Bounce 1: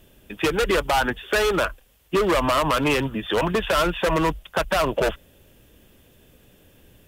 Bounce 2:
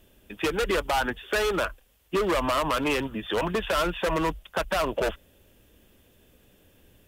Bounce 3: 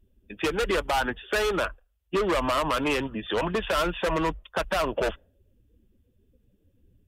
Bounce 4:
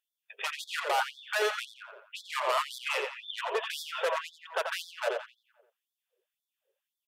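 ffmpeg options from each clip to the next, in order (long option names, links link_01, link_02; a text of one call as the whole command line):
ffmpeg -i in.wav -af "equalizer=frequency=140:width=6.3:gain=-8.5,volume=-4.5dB" out.wav
ffmpeg -i in.wav -af "afftdn=noise_reduction=22:noise_floor=-50" out.wav
ffmpeg -i in.wav -filter_complex "[0:a]asplit=2[link_01][link_02];[link_02]adelay=87,lowpass=frequency=4100:poles=1,volume=-4.5dB,asplit=2[link_03][link_04];[link_04]adelay=87,lowpass=frequency=4100:poles=1,volume=0.51,asplit=2[link_05][link_06];[link_06]adelay=87,lowpass=frequency=4100:poles=1,volume=0.51,asplit=2[link_07][link_08];[link_08]adelay=87,lowpass=frequency=4100:poles=1,volume=0.51,asplit=2[link_09][link_10];[link_10]adelay=87,lowpass=frequency=4100:poles=1,volume=0.51,asplit=2[link_11][link_12];[link_12]adelay=87,lowpass=frequency=4100:poles=1,volume=0.51,asplit=2[link_13][link_14];[link_14]adelay=87,lowpass=frequency=4100:poles=1,volume=0.51[link_15];[link_03][link_05][link_07][link_09][link_11][link_13][link_15]amix=inputs=7:normalize=0[link_16];[link_01][link_16]amix=inputs=2:normalize=0,afftfilt=real='re*gte(b*sr/1024,370*pow(3400/370,0.5+0.5*sin(2*PI*1.9*pts/sr)))':imag='im*gte(b*sr/1024,370*pow(3400/370,0.5+0.5*sin(2*PI*1.9*pts/sr)))':win_size=1024:overlap=0.75,volume=-3dB" out.wav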